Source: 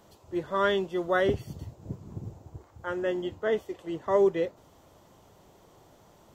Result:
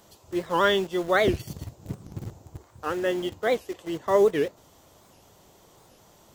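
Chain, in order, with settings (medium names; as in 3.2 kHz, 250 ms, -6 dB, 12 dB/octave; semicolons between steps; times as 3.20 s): treble shelf 2.7 kHz +8.5 dB; in parallel at -9 dB: word length cut 6-bit, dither none; on the sum: warped record 78 rpm, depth 250 cents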